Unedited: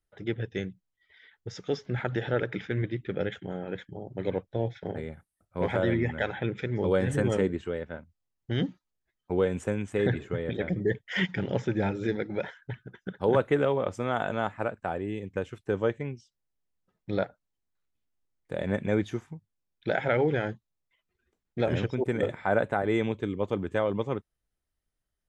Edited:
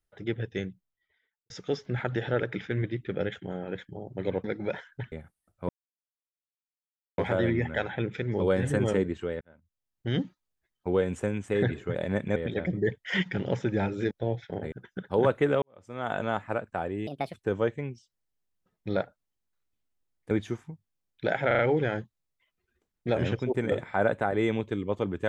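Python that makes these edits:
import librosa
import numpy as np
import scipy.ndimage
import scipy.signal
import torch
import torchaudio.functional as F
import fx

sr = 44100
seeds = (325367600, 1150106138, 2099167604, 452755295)

y = fx.studio_fade_out(x, sr, start_s=0.59, length_s=0.91)
y = fx.edit(y, sr, fx.swap(start_s=4.44, length_s=0.61, other_s=12.14, other_length_s=0.68),
    fx.insert_silence(at_s=5.62, length_s=1.49),
    fx.fade_in_span(start_s=7.85, length_s=0.71),
    fx.fade_in_span(start_s=13.72, length_s=0.53, curve='qua'),
    fx.speed_span(start_s=15.17, length_s=0.39, speed=1.45),
    fx.move(start_s=18.53, length_s=0.41, to_s=10.39),
    fx.stutter(start_s=20.1, slice_s=0.04, count=4), tone=tone)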